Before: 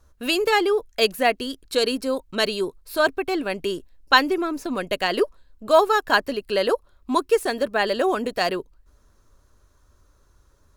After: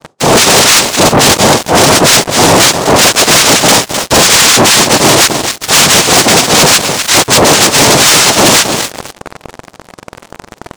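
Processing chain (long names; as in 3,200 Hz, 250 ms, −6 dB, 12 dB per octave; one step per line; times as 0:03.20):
frequency axis turned over on the octave scale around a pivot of 1,300 Hz
parametric band 1,100 Hz −5.5 dB 0.86 octaves
reversed playback
downward compressor 16 to 1, threshold −31 dBFS, peak gain reduction 18.5 dB
reversed playback
far-end echo of a speakerphone 300 ms, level −22 dB
cochlear-implant simulation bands 2
on a send: repeating echo 257 ms, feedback 26%, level −19 dB
on the sum: leveller curve on the samples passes 5
boost into a limiter +27 dB
level −1 dB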